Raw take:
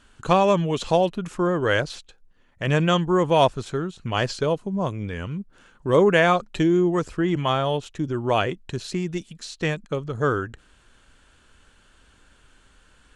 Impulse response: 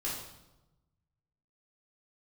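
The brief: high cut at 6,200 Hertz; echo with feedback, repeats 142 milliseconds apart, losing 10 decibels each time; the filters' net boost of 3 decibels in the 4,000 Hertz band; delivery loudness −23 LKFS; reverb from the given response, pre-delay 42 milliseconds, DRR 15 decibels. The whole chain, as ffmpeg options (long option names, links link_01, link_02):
-filter_complex "[0:a]lowpass=6200,equalizer=frequency=4000:width_type=o:gain=4.5,aecho=1:1:142|284|426|568:0.316|0.101|0.0324|0.0104,asplit=2[link_01][link_02];[1:a]atrim=start_sample=2205,adelay=42[link_03];[link_02][link_03]afir=irnorm=-1:irlink=0,volume=-18.5dB[link_04];[link_01][link_04]amix=inputs=2:normalize=0,volume=-1dB"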